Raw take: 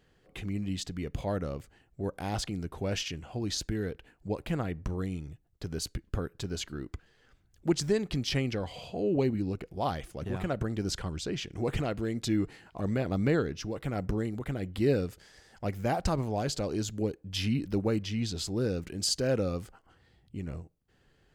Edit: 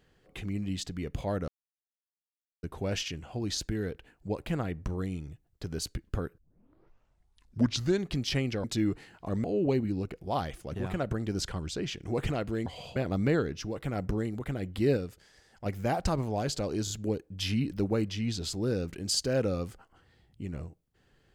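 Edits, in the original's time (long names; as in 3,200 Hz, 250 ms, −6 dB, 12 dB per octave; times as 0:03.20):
0:01.48–0:02.63: silence
0:06.38: tape start 1.75 s
0:08.64–0:08.94: swap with 0:12.16–0:12.96
0:14.97–0:15.66: clip gain −4 dB
0:16.84: stutter 0.03 s, 3 plays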